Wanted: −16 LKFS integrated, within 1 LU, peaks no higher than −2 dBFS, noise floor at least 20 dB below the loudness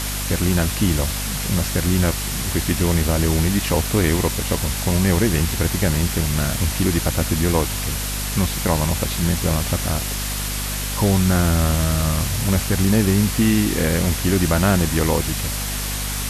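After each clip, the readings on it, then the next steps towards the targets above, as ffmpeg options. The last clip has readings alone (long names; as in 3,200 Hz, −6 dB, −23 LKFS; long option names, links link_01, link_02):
mains hum 50 Hz; hum harmonics up to 250 Hz; level of the hum −25 dBFS; background noise floor −25 dBFS; target noise floor −40 dBFS; integrated loudness −20.0 LKFS; sample peak −4.0 dBFS; target loudness −16.0 LKFS
→ -af "bandreject=frequency=50:width_type=h:width=4,bandreject=frequency=100:width_type=h:width=4,bandreject=frequency=150:width_type=h:width=4,bandreject=frequency=200:width_type=h:width=4,bandreject=frequency=250:width_type=h:width=4"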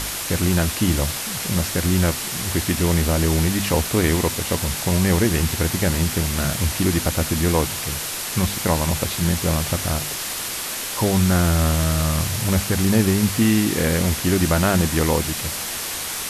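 mains hum none found; background noise floor −28 dBFS; target noise floor −41 dBFS
→ -af "afftdn=noise_reduction=13:noise_floor=-28"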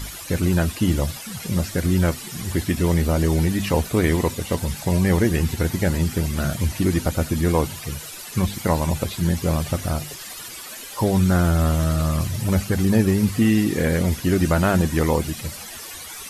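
background noise floor −36 dBFS; target noise floor −42 dBFS
→ -af "afftdn=noise_reduction=6:noise_floor=-36"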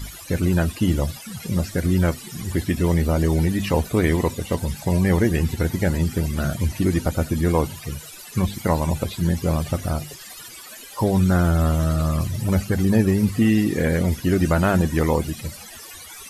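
background noise floor −40 dBFS; target noise floor −42 dBFS
→ -af "afftdn=noise_reduction=6:noise_floor=-40"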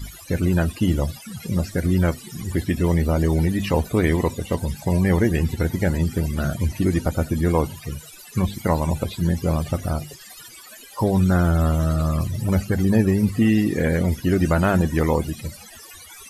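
background noise floor −43 dBFS; integrated loudness −22.0 LKFS; sample peak −5.5 dBFS; target loudness −16.0 LKFS
→ -af "volume=6dB,alimiter=limit=-2dB:level=0:latency=1"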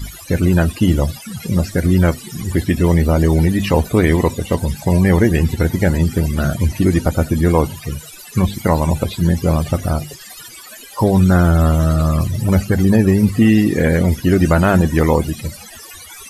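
integrated loudness −16.0 LKFS; sample peak −2.0 dBFS; background noise floor −37 dBFS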